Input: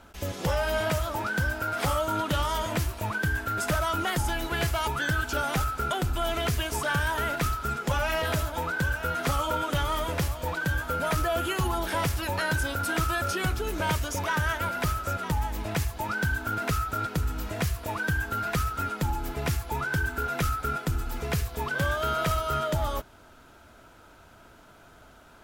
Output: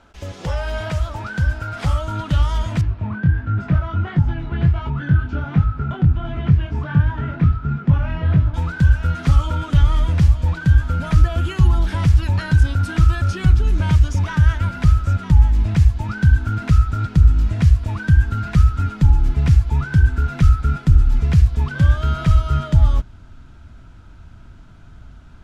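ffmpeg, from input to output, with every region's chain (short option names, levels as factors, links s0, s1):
-filter_complex "[0:a]asettb=1/sr,asplit=3[s0][s1][s2];[s0]atrim=end=2.814[s3];[s1]atrim=start=2.81:end=8.54,asetpts=PTS-STARTPTS,afade=t=in:d=0.004:c=qsin,afade=t=out:st=5.726:d=0.004:c=qsin,flanger=delay=19.5:depth=4.6:speed=1.4,highpass=110,lowpass=2300,lowshelf=f=340:g=8.5[s4];[s2]atrim=start=8.536[s5];[s3][s4]acrossfade=d=0.004:c1=hsin:c2=qsin[s6];[s6][s5]acrossfade=d=0.004:c1=qsin:c2=hsin,lowpass=6500,asubboost=boost=9.5:cutoff=160"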